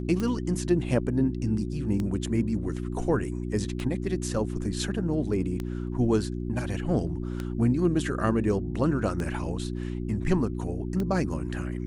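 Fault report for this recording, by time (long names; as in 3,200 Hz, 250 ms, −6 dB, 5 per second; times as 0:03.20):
mains hum 60 Hz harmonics 6 −32 dBFS
scratch tick 33 1/3 rpm −18 dBFS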